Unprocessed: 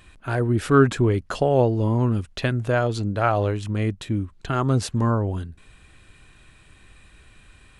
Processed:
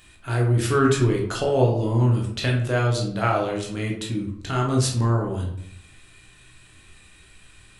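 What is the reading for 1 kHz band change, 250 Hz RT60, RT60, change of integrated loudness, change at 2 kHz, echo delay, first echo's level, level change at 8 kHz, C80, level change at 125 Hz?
-1.0 dB, 0.90 s, 0.70 s, 0.0 dB, 0.0 dB, no echo, no echo, +6.5 dB, 9.5 dB, +1.0 dB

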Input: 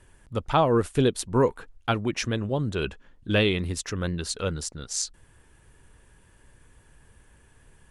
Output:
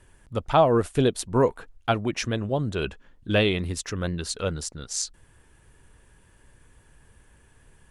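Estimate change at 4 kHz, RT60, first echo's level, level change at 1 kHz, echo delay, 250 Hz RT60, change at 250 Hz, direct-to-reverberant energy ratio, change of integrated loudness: 0.0 dB, no reverb, no echo, +1.5 dB, no echo, no reverb, 0.0 dB, no reverb, +1.0 dB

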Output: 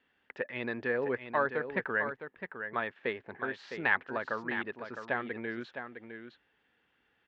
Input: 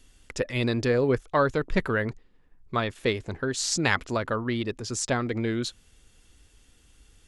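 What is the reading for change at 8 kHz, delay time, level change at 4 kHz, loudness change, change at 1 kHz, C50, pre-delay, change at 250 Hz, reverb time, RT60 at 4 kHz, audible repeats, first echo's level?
under -35 dB, 659 ms, -16.5 dB, -7.0 dB, -5.0 dB, no reverb, no reverb, -11.5 dB, no reverb, no reverb, 1, -8.5 dB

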